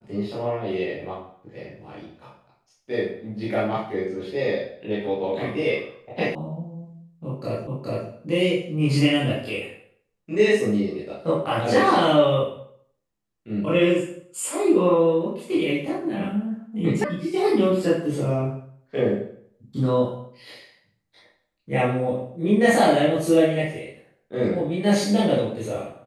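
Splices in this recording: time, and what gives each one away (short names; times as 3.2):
6.35 sound cut off
7.67 repeat of the last 0.42 s
17.04 sound cut off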